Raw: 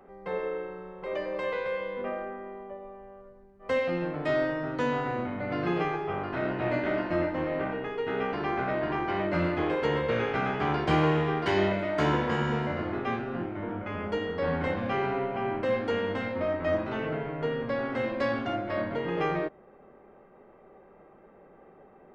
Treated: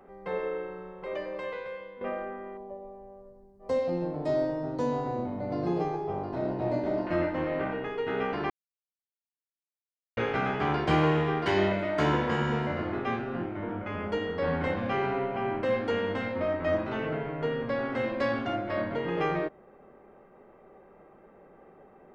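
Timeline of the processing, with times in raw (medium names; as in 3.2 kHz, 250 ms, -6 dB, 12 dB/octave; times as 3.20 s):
0.83–2.01 s: fade out, to -12.5 dB
2.57–7.07 s: high-order bell 2 kHz -13.5 dB
8.50–10.17 s: mute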